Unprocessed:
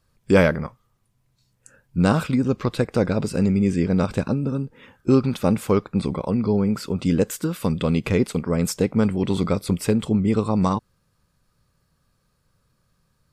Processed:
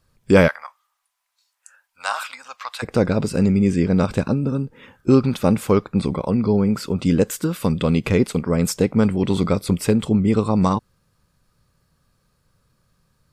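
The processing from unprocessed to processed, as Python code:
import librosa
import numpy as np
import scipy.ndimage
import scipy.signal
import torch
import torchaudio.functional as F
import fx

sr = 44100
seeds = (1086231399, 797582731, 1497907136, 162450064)

y = fx.cheby2_highpass(x, sr, hz=400.0, order=4, stop_db=40, at=(0.47, 2.82), fade=0.02)
y = F.gain(torch.from_numpy(y), 2.5).numpy()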